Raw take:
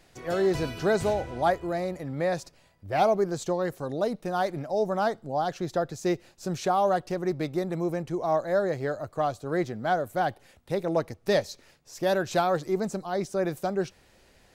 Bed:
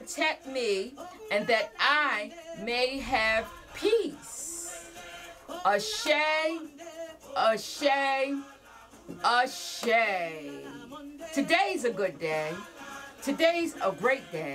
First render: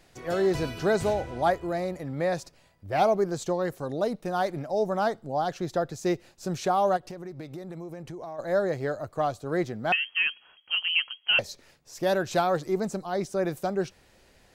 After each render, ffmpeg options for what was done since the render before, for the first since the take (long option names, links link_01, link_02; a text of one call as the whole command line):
ffmpeg -i in.wav -filter_complex "[0:a]asplit=3[link_01][link_02][link_03];[link_01]afade=type=out:start_time=6.96:duration=0.02[link_04];[link_02]acompressor=threshold=-35dB:ratio=10:attack=3.2:release=140:knee=1:detection=peak,afade=type=in:start_time=6.96:duration=0.02,afade=type=out:start_time=8.38:duration=0.02[link_05];[link_03]afade=type=in:start_time=8.38:duration=0.02[link_06];[link_04][link_05][link_06]amix=inputs=3:normalize=0,asettb=1/sr,asplit=3[link_07][link_08][link_09];[link_07]atrim=end=9.924[link_10];[link_08]atrim=start=9.92:end=11.39,asetpts=PTS-STARTPTS,afade=type=in:duration=0.004:curve=qsin,afade=type=out:start_time=1.466:duration=0.004:curve=qsin,lowpass=frequency=2800:width_type=q:width=0.5098,lowpass=frequency=2800:width_type=q:width=0.6013,lowpass=frequency=2800:width_type=q:width=0.9,lowpass=frequency=2800:width_type=q:width=2.563,afreqshift=-3300[link_11];[link_09]atrim=start=11.386[link_12];[link_10][link_11]acrossfade=duration=0.004:curve1=hsin:curve2=qsin[link_13];[link_13][link_12]acrossfade=duration=0.004:curve1=qsin:curve2=hsin" out.wav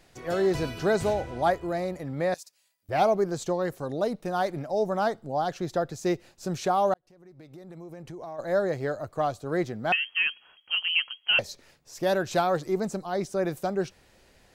ffmpeg -i in.wav -filter_complex "[0:a]asettb=1/sr,asplit=3[link_01][link_02][link_03];[link_01]atrim=end=2.344[link_04];[link_02]atrim=start=2.34:end=2.89,asetpts=PTS-STARTPTS,afade=type=in:duration=0.004:curve=qsin,afade=type=out:start_time=0.546:duration=0.004:curve=qsin,aderivative[link_05];[link_03]atrim=start=2.886[link_06];[link_04][link_05]acrossfade=duration=0.004:curve1=hsin:curve2=qsin[link_07];[link_07][link_06]acrossfade=duration=0.004:curve1=qsin:curve2=hsin,asplit=2[link_08][link_09];[link_08]atrim=end=6.94,asetpts=PTS-STARTPTS,afade=type=out:start_time=6.936:duration=0.004:curve=hsin[link_10];[link_09]atrim=start=6.94,asetpts=PTS-STARTPTS,afade=type=in:duration=1.39[link_11];[link_10][link_11]concat=n=2:v=0:a=1" out.wav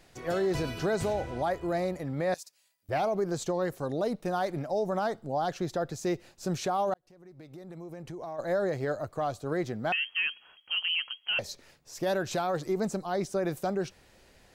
ffmpeg -i in.wav -af "alimiter=limit=-21dB:level=0:latency=1:release=55" out.wav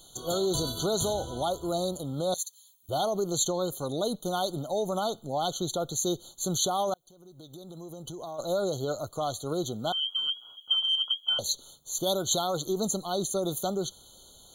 ffmpeg -i in.wav -af "aexciter=amount=4.3:drive=5.8:freq=2400,afftfilt=real='re*eq(mod(floor(b*sr/1024/1500),2),0)':imag='im*eq(mod(floor(b*sr/1024/1500),2),0)':win_size=1024:overlap=0.75" out.wav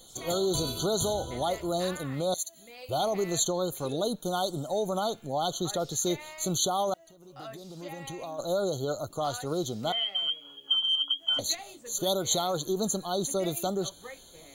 ffmpeg -i in.wav -i bed.wav -filter_complex "[1:a]volume=-19dB[link_01];[0:a][link_01]amix=inputs=2:normalize=0" out.wav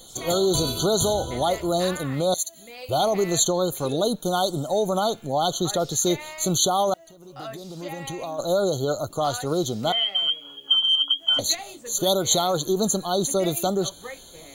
ffmpeg -i in.wav -af "volume=6.5dB" out.wav